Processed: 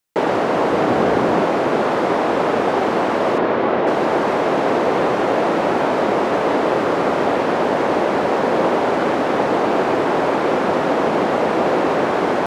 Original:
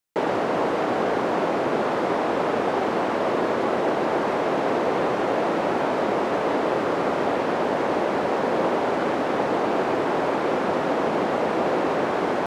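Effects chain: 0.72–1.43 s: bass shelf 210 Hz +8 dB; 3.38–3.87 s: low-pass 3.5 kHz 12 dB/octave; trim +5.5 dB

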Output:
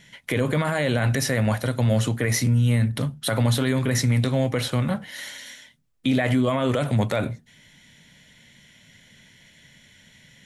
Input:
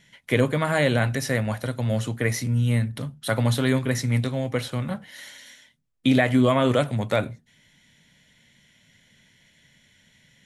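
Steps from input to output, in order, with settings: peak limiter -19 dBFS, peak gain reduction 11.5 dB; trim +6 dB

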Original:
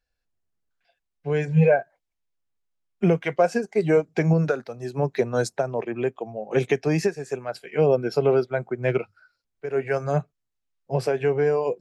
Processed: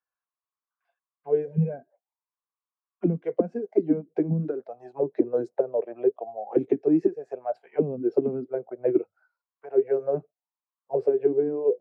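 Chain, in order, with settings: auto-wah 210–1100 Hz, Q 6.7, down, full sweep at -15 dBFS; trim +7 dB

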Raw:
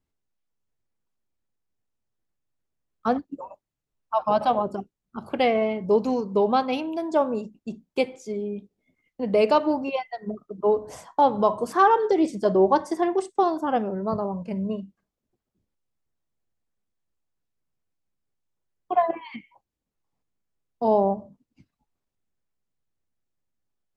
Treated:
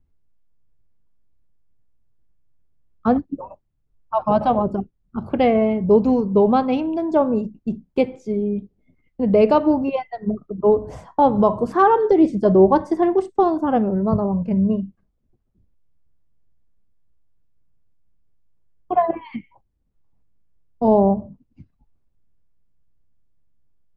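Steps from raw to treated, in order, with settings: RIAA curve playback; trim +2 dB

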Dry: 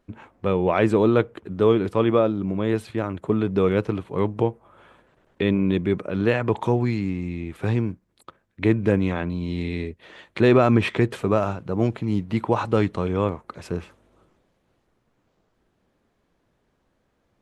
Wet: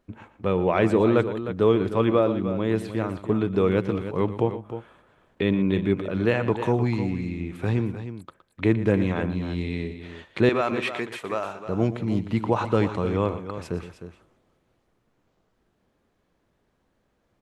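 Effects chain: 10.49–11.68 s: high-pass 960 Hz 6 dB/octave; on a send: multi-tap echo 117/307 ms -14/-11 dB; on the sum: trim -1.5 dB

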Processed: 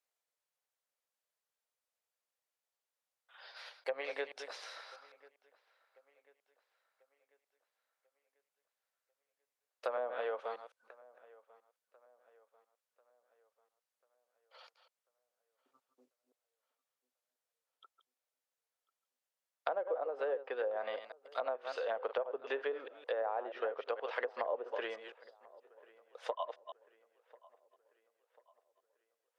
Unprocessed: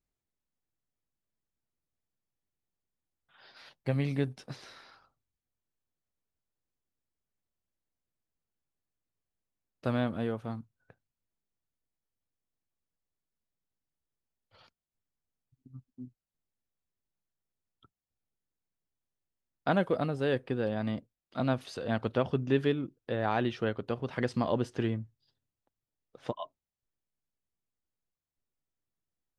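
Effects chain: chunks repeated in reverse 160 ms, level -11 dB; Chebyshev high-pass 490 Hz, order 4; low-pass that closes with the level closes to 820 Hz, closed at -30.5 dBFS; compression 6:1, threshold -35 dBFS, peak gain reduction 9 dB; feedback echo behind a low-pass 1042 ms, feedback 46%, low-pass 2.7 kHz, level -23 dB; trim +3 dB

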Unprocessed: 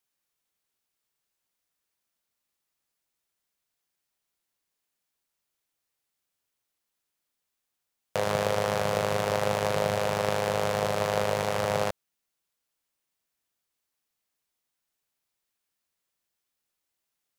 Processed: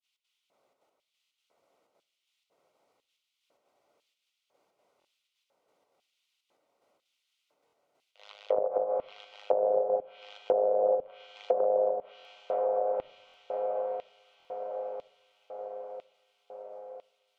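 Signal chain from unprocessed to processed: resonances exaggerated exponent 2; low-pass 6.5 kHz 24 dB/octave; added noise brown -59 dBFS; expander -59 dBFS; trance gate "xx.xxxxxx.x..." 185 bpm -12 dB; on a send: echo that smears into a reverb 513 ms, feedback 76%, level -4.5 dB; on the sum: LFO high-pass square 1 Hz 560–3100 Hz; Butterworth band-stop 1.7 kHz, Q 5.7; simulated room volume 2700 m³, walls furnished, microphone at 0.31 m; low-pass that closes with the level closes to 510 Hz, closed at -18 dBFS; buffer glitch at 1.24/4.99/7.66/12.18/13.27/14.38 s, samples 1024, times 2; trim -3.5 dB

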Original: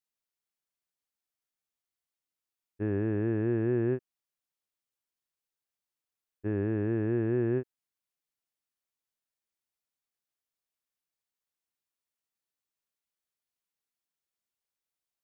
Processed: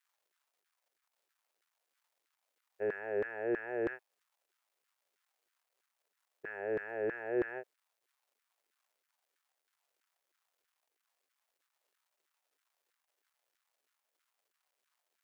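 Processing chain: static phaser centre 1.1 kHz, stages 6; crackle 500 per s -72 dBFS; LFO high-pass saw down 3.1 Hz 350–1600 Hz; trim +2 dB

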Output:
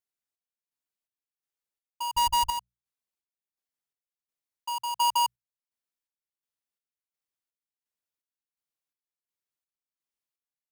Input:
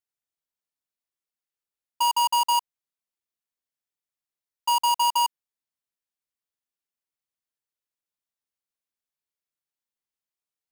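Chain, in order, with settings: 2.14–2.58 s: comb filter that takes the minimum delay 6.3 ms; hum notches 60/120/180 Hz; square tremolo 1.4 Hz, depth 60%, duty 50%; trim -2 dB

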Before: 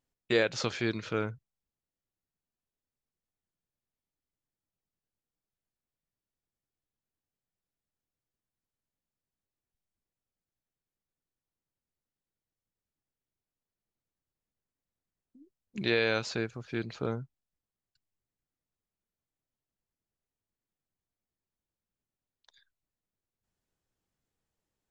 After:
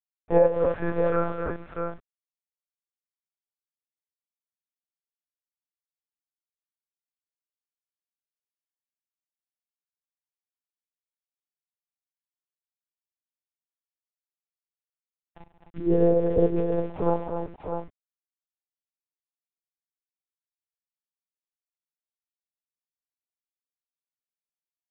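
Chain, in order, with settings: high-order bell 710 Hz +10 dB 1.2 oct; in parallel at -0.5 dB: compression 6:1, threshold -34 dBFS, peak gain reduction 16.5 dB; on the sum: LFO low-pass sine 0.18 Hz 260–1600 Hz; harmonic-percussive split percussive -13 dB; small samples zeroed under -41 dBFS; comb 2.4 ms, depth 56%; multi-tap echo 53/139/197/259/643 ms -11.5/-14.5/-15.5/-6.5/-5.5 dB; monotone LPC vocoder at 8 kHz 170 Hz; low-pass 2.7 kHz 12 dB/octave

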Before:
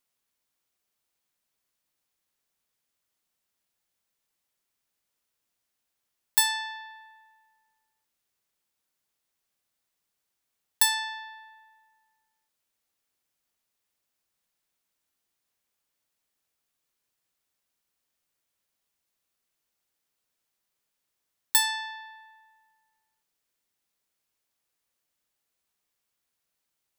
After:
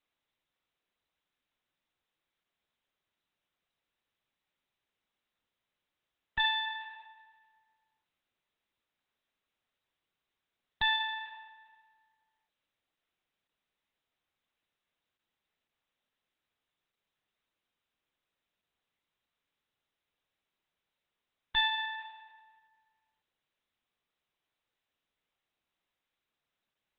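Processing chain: single-diode clipper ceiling -12.5 dBFS; Opus 8 kbps 48 kHz

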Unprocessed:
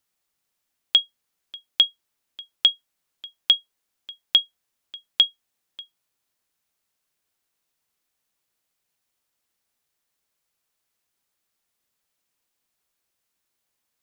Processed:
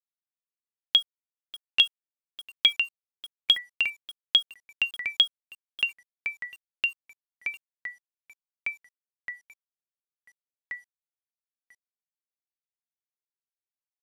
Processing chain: small samples zeroed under -38.5 dBFS; ever faster or slower copies 656 ms, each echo -3 st, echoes 3, each echo -6 dB; trim -3 dB

